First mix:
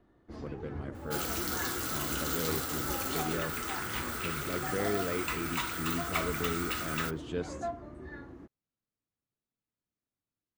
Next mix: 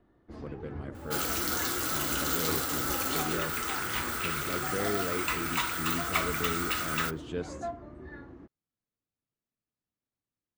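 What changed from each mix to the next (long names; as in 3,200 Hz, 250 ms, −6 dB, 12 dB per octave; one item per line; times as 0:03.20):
first sound: add high-frequency loss of the air 92 metres
second sound +4.0 dB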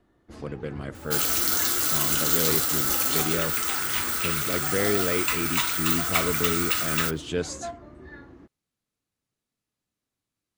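speech +7.0 dB
master: add high-shelf EQ 2,700 Hz +9.5 dB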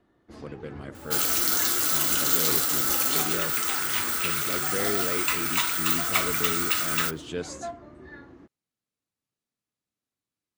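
speech −4.5 dB
master: add low-shelf EQ 62 Hz −10.5 dB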